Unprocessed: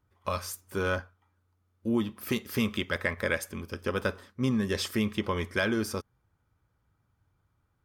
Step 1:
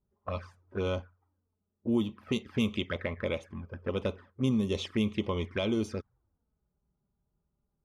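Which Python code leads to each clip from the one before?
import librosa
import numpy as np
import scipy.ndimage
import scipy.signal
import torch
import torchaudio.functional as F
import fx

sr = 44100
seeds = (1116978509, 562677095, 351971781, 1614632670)

y = fx.env_flanger(x, sr, rest_ms=5.1, full_db=-26.5)
y = fx.env_lowpass(y, sr, base_hz=580.0, full_db=-23.5)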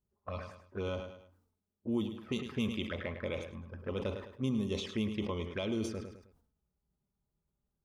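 y = fx.echo_feedback(x, sr, ms=105, feedback_pct=34, wet_db=-12.0)
y = fx.sustainer(y, sr, db_per_s=80.0)
y = F.gain(torch.from_numpy(y), -5.5).numpy()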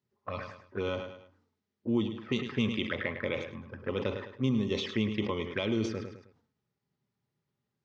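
y = fx.cabinet(x, sr, low_hz=110.0, low_slope=24, high_hz=5700.0, hz=(110.0, 180.0, 650.0, 1900.0), db=(5, -5, -4, 6))
y = F.gain(torch.from_numpy(y), 5.0).numpy()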